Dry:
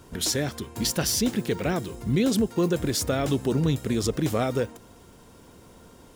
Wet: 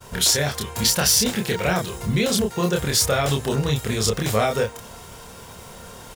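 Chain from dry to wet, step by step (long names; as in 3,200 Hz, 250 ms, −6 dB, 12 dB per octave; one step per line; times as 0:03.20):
downward expander −48 dBFS
low-shelf EQ 470 Hz −5 dB
in parallel at +1.5 dB: downward compressor, threshold −36 dBFS, peak gain reduction 13 dB
on the sum: parametric band 300 Hz −13.5 dB 0.56 octaves
double-tracking delay 28 ms −2.5 dB
reversed playback
upward compression, threshold −39 dBFS
reversed playback
level +4.5 dB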